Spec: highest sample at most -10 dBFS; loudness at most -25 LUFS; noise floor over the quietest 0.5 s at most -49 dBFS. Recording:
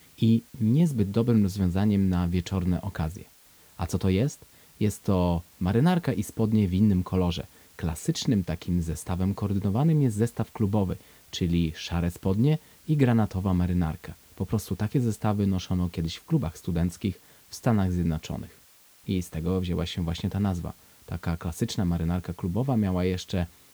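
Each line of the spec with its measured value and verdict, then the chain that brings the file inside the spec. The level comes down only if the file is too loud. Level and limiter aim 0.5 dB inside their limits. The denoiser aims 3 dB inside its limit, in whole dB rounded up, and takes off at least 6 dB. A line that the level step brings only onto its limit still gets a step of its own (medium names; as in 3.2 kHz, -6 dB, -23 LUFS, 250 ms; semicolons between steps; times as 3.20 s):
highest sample -8.5 dBFS: fail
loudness -27.0 LUFS: pass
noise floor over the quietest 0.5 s -56 dBFS: pass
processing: peak limiter -10.5 dBFS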